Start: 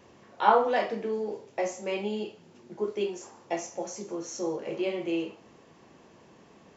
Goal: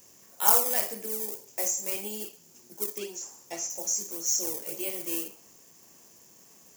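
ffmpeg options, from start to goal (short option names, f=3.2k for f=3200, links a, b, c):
-filter_complex "[0:a]asplit=2[a][b];[b]acrusher=samples=18:mix=1:aa=0.000001:lfo=1:lforange=28.8:lforate=1.8,volume=-11dB[c];[a][c]amix=inputs=2:normalize=0,aexciter=amount=4.5:drive=5.6:freq=5.4k,asettb=1/sr,asplit=3[d][e][f];[d]atrim=end=2.984[g];[e]atrim=start=2.98:end=3.7,asetpts=PTS-STARTPTS,afade=t=in:d=0.004:c=qsin,afade=t=out:st=0.716:d=0.004:c=qsin,acrossover=split=6200[h][i];[i]acompressor=threshold=-54dB:ratio=4:attack=1:release=60[j];[h][j]amix=inputs=2:normalize=0[k];[f]atrim=start=3.696[l];[g][k]acrossfade=d=0.004:c1=hsin:c2=qsin[m];[m][l]acrossfade=d=0.004:c1=qsin:c2=hsin,crystalizer=i=5:c=0,volume=-11dB"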